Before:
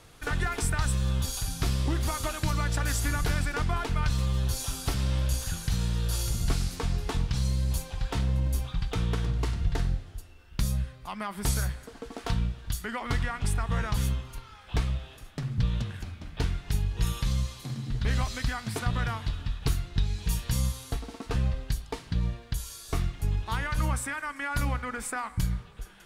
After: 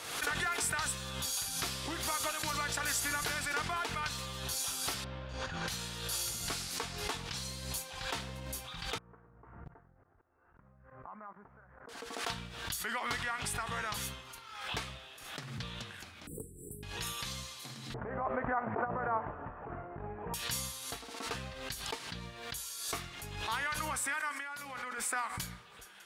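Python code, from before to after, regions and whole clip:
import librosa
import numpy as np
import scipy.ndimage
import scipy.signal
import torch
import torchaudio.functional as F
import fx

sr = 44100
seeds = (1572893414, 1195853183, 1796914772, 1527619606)

y = fx.chain(x, sr, fx.spacing_loss(db_at_10k=41),
    fx.env_flatten(amount_pct=100), at=(5.04, 5.68))
y = fx.chain(y, sr, fx.cvsd(bps=64000),
    fx.cheby2_lowpass(hz=3600.0, order=4, stop_db=50),
    fx.level_steps(step_db=22), at=(8.98, 11.89))
y = fx.chain(y, sr, fx.brickwall_bandstop(low_hz=510.0, high_hz=7600.0),
    fx.bass_treble(bass_db=-5, treble_db=0),
    fx.band_squash(depth_pct=100), at=(16.27, 16.83))
y = fx.chain(y, sr, fx.peak_eq(hz=620.0, db=14.5, octaves=2.7),
    fx.over_compress(threshold_db=-24.0, ratio=-0.5),
    fx.gaussian_blur(sigma=6.4), at=(17.94, 20.34))
y = fx.chain(y, sr, fx.highpass(hz=150.0, slope=12),
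    fx.over_compress(threshold_db=-39.0, ratio=-1.0), at=(24.29, 24.98))
y = fx.highpass(y, sr, hz=890.0, slope=6)
y = fx.pre_swell(y, sr, db_per_s=53.0)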